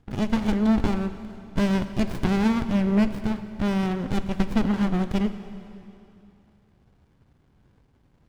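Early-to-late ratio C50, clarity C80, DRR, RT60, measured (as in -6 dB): 11.0 dB, 11.5 dB, 10.0 dB, 2.8 s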